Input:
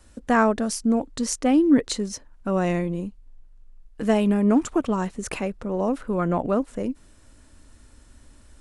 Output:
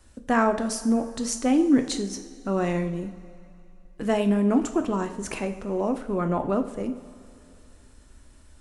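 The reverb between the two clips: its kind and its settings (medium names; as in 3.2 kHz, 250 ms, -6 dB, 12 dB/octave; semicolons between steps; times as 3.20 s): two-slope reverb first 0.56 s, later 2.8 s, from -15 dB, DRR 6 dB; trim -2.5 dB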